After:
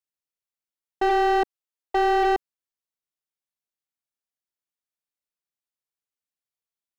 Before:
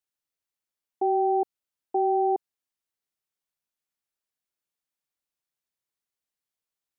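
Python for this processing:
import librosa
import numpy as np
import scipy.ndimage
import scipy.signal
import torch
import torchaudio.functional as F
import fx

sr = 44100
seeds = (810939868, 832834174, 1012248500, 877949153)

y = fx.highpass(x, sr, hz=300.0, slope=24, at=(1.09, 2.23), fade=0.02)
y = fx.leveller(y, sr, passes=3)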